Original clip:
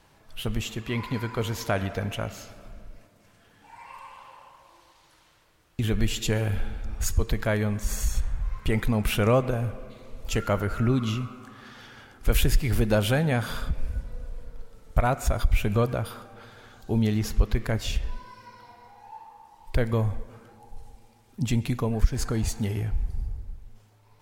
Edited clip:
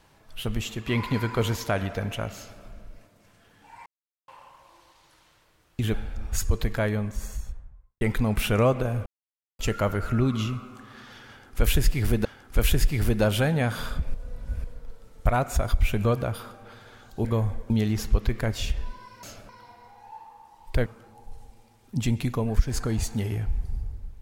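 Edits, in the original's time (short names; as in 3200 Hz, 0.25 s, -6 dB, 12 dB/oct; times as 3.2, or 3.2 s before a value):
0.87–1.56 gain +3.5 dB
2.35–2.61 copy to 18.49
3.86–4.28 mute
5.94–6.62 cut
7.35–8.69 studio fade out
9.74–10.27 mute
11.96–12.93 loop, 2 plays
13.85–14.35 reverse
19.86–20.31 move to 16.96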